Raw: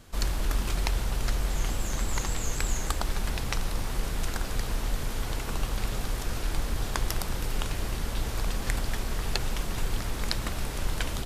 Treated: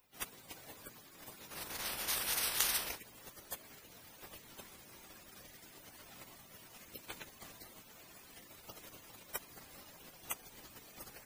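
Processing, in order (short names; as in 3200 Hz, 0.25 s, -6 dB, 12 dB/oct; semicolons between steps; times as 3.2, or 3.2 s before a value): differentiator; spectral gate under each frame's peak -20 dB weak; gain +14.5 dB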